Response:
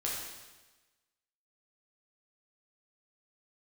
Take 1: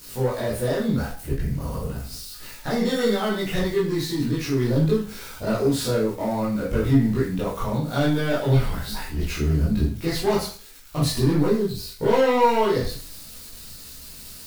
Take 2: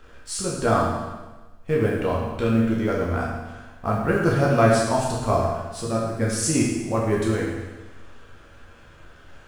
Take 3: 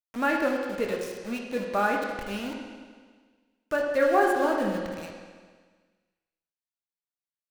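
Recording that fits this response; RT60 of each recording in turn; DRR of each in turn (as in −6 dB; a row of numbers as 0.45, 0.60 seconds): 2; 0.40, 1.2, 1.6 seconds; −8.0, −4.5, 0.0 decibels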